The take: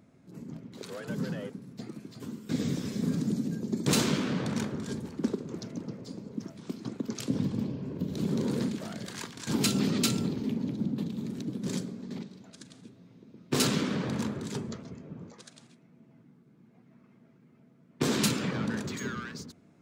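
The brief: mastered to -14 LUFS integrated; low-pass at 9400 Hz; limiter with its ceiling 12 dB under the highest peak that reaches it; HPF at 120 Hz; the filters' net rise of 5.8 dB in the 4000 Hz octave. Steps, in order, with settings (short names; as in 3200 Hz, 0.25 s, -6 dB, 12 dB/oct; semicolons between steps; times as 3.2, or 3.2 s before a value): HPF 120 Hz; LPF 9400 Hz; bell 4000 Hz +7 dB; gain +20 dB; limiter -1.5 dBFS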